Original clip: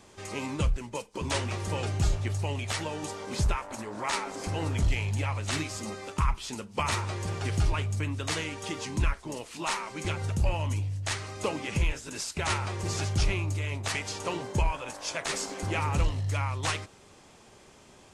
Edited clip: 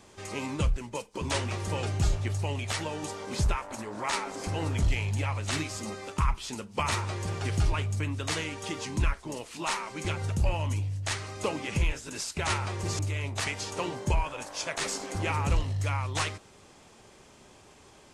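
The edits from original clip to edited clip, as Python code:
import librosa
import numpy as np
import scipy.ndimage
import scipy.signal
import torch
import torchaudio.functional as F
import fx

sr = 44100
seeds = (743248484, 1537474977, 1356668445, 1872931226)

y = fx.edit(x, sr, fx.cut(start_s=12.99, length_s=0.48), tone=tone)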